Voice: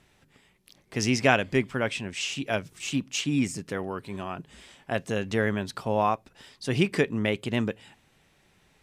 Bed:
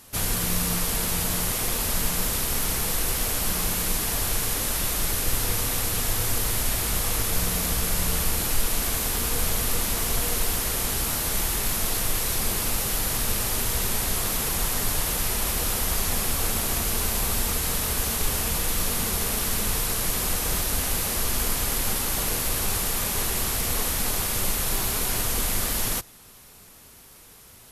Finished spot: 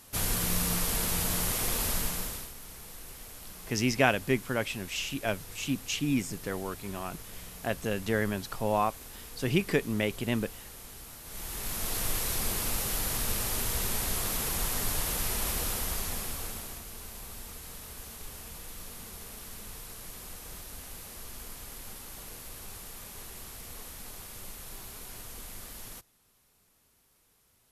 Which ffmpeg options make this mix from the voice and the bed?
ffmpeg -i stem1.wav -i stem2.wav -filter_complex "[0:a]adelay=2750,volume=-3dB[link_01];[1:a]volume=11dB,afade=type=out:start_time=1.86:duration=0.67:silence=0.149624,afade=type=in:start_time=11.24:duration=0.82:silence=0.177828,afade=type=out:start_time=15.52:duration=1.32:silence=0.223872[link_02];[link_01][link_02]amix=inputs=2:normalize=0" out.wav

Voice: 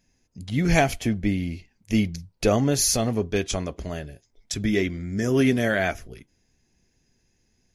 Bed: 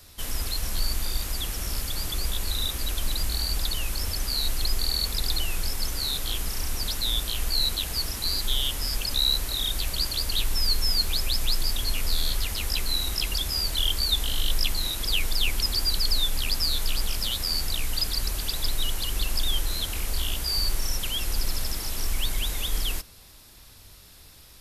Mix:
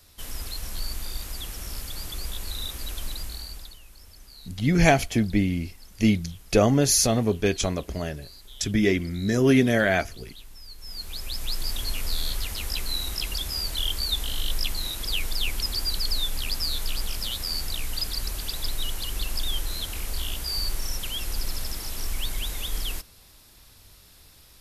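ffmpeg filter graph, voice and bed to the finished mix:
ffmpeg -i stem1.wav -i stem2.wav -filter_complex "[0:a]adelay=4100,volume=1.5dB[link_01];[1:a]volume=13dB,afade=type=out:start_time=3.03:duration=0.76:silence=0.16788,afade=type=in:start_time=10.77:duration=0.99:silence=0.125893[link_02];[link_01][link_02]amix=inputs=2:normalize=0" out.wav

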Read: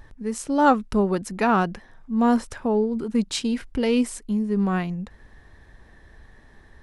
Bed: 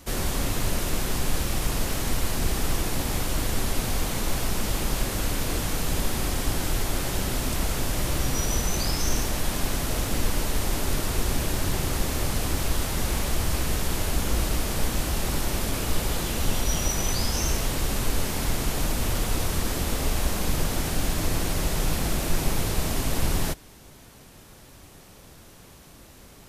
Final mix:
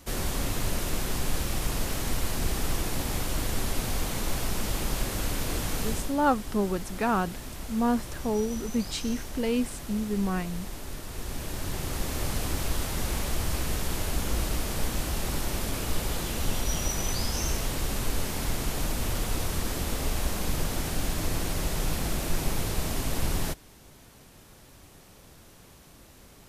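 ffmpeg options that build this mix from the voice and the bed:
ffmpeg -i stem1.wav -i stem2.wav -filter_complex "[0:a]adelay=5600,volume=-6dB[link_01];[1:a]volume=6dB,afade=type=out:start_time=5.85:duration=0.31:silence=0.334965,afade=type=in:start_time=11.06:duration=1.23:silence=0.354813[link_02];[link_01][link_02]amix=inputs=2:normalize=0" out.wav

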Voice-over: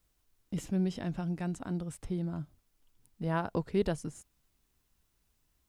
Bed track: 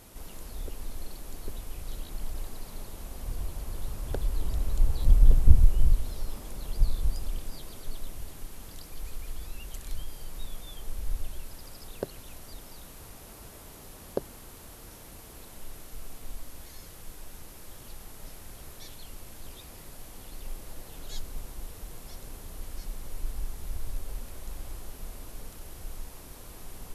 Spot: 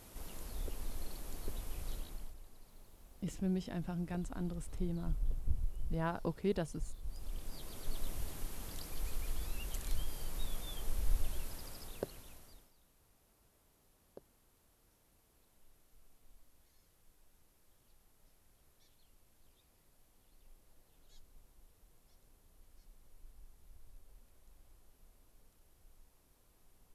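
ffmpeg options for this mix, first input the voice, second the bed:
ffmpeg -i stem1.wav -i stem2.wav -filter_complex "[0:a]adelay=2700,volume=-5dB[link_01];[1:a]volume=13.5dB,afade=type=out:start_time=1.88:duration=0.48:silence=0.188365,afade=type=in:start_time=7.03:duration=1.08:silence=0.133352,afade=type=out:start_time=11.4:duration=1.32:silence=0.0749894[link_02];[link_01][link_02]amix=inputs=2:normalize=0" out.wav

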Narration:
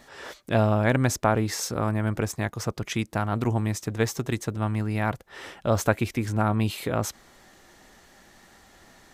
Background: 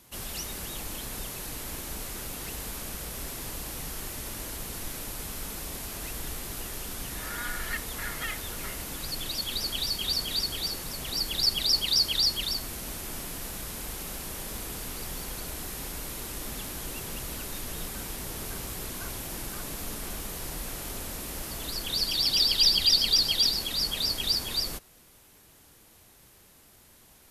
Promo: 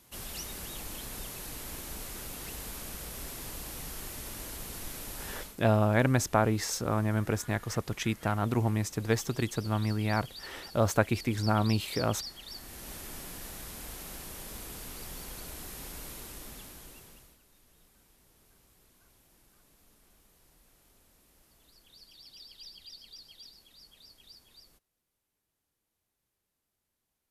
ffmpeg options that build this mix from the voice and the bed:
ffmpeg -i stem1.wav -i stem2.wav -filter_complex "[0:a]adelay=5100,volume=-3dB[link_01];[1:a]volume=7dB,afade=type=out:start_time=5.33:duration=0.24:silence=0.223872,afade=type=in:start_time=12.44:duration=0.49:silence=0.281838,afade=type=out:start_time=16.07:duration=1.31:silence=0.0841395[link_02];[link_01][link_02]amix=inputs=2:normalize=0" out.wav

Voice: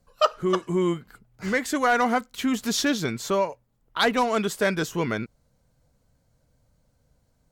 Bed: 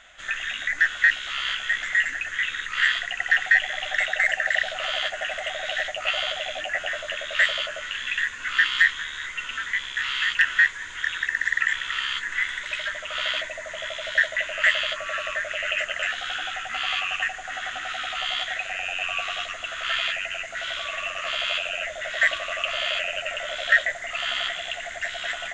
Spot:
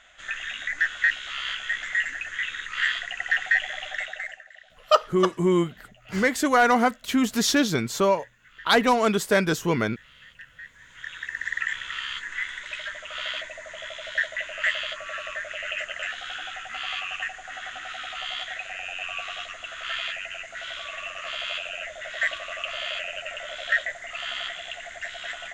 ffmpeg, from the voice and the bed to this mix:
ffmpeg -i stem1.wav -i stem2.wav -filter_complex "[0:a]adelay=4700,volume=2.5dB[link_01];[1:a]volume=17.5dB,afade=type=out:start_time=3.71:duration=0.74:silence=0.0749894,afade=type=in:start_time=10.62:duration=0.96:silence=0.0891251[link_02];[link_01][link_02]amix=inputs=2:normalize=0" out.wav

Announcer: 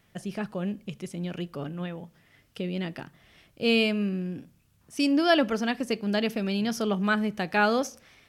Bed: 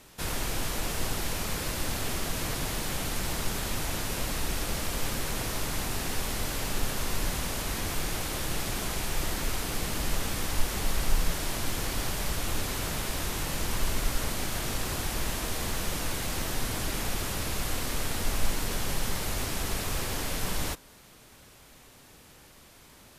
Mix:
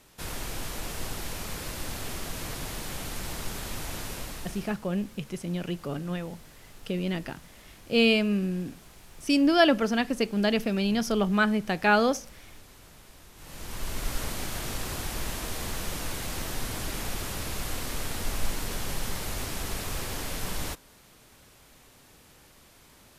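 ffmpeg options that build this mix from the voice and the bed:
ffmpeg -i stem1.wav -i stem2.wav -filter_complex "[0:a]adelay=4300,volume=1.5dB[link_01];[1:a]volume=14dB,afade=type=out:start_time=4.06:duration=0.73:silence=0.158489,afade=type=in:start_time=13.35:duration=0.81:silence=0.125893[link_02];[link_01][link_02]amix=inputs=2:normalize=0" out.wav

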